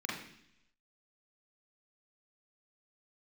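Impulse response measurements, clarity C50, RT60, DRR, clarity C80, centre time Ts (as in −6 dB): 3.5 dB, 0.70 s, −4.0 dB, 7.0 dB, 50 ms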